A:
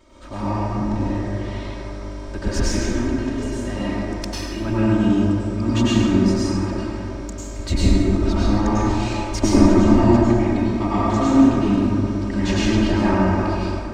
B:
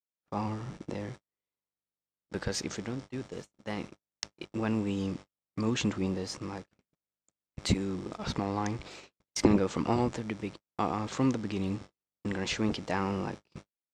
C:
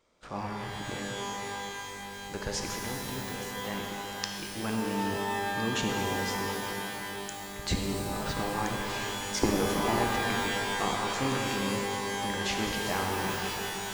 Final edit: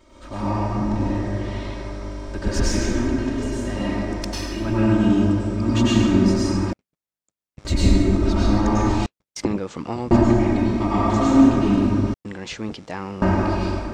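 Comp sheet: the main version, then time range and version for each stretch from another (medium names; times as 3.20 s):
A
6.73–7.65 s: from B
9.06–10.11 s: from B
12.14–13.22 s: from B
not used: C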